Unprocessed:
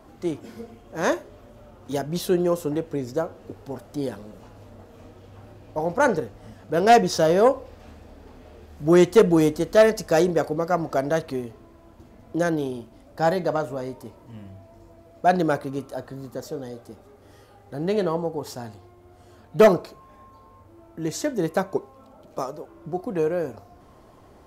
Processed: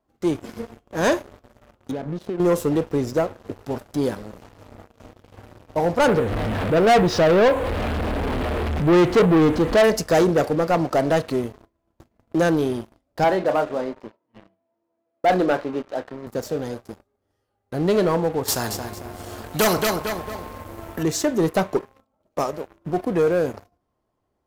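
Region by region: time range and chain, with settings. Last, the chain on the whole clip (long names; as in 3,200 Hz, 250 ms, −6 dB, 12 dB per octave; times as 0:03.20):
0:01.91–0:02.40: resonant band-pass 300 Hz, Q 0.52 + downward compressor 10 to 1, threshold −30 dBFS
0:06.08–0:09.84: converter with a step at zero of −30 dBFS + low-pass filter 3,100 Hz + upward compression, threshold −26 dBFS
0:10.45–0:11.44: high-pass filter 81 Hz + highs frequency-modulated by the lows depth 0.13 ms
0:13.24–0:16.27: high-pass filter 270 Hz + high-frequency loss of the air 210 metres + double-tracking delay 27 ms −10 dB
0:18.48–0:21.03: high-shelf EQ 11,000 Hz +10.5 dB + repeating echo 225 ms, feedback 29%, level −11 dB + every bin compressed towards the loudest bin 2 to 1
whole clip: noise gate −47 dBFS, range −13 dB; leveller curve on the samples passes 3; level −5 dB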